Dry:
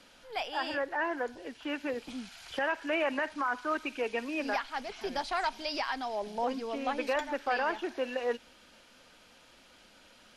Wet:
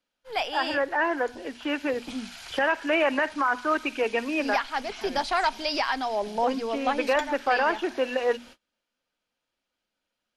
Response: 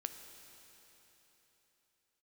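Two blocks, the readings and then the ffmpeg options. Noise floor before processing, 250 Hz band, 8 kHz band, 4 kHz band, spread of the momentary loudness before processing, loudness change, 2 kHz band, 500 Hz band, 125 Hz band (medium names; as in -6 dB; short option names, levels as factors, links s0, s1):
-59 dBFS, +7.0 dB, +7.0 dB, +7.0 dB, 8 LU, +7.0 dB, +7.0 dB, +7.0 dB, no reading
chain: -af "bandreject=f=60:t=h:w=6,bandreject=f=120:t=h:w=6,bandreject=f=180:t=h:w=6,bandreject=f=240:t=h:w=6,agate=range=0.0251:threshold=0.00251:ratio=16:detection=peak,volume=2.24"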